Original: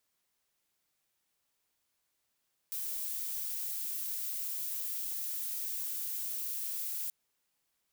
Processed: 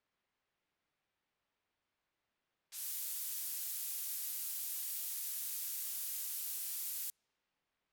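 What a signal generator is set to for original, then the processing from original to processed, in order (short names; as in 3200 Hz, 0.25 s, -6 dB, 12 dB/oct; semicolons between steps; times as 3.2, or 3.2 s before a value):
noise violet, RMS -37 dBFS 4.38 s
low-pass opened by the level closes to 2700 Hz, open at -33.5 dBFS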